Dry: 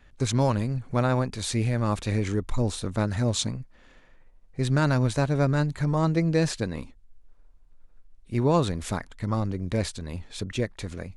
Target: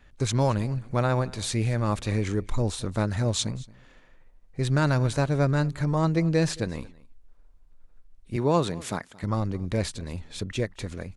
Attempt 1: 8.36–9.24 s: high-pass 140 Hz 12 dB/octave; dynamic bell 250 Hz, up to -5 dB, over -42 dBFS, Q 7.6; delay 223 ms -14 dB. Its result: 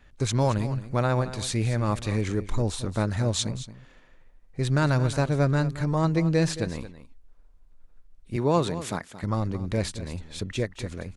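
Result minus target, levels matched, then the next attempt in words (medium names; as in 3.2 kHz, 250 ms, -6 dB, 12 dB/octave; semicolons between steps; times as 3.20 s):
echo-to-direct +8 dB
8.36–9.24 s: high-pass 140 Hz 12 dB/octave; dynamic bell 250 Hz, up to -5 dB, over -42 dBFS, Q 7.6; delay 223 ms -22 dB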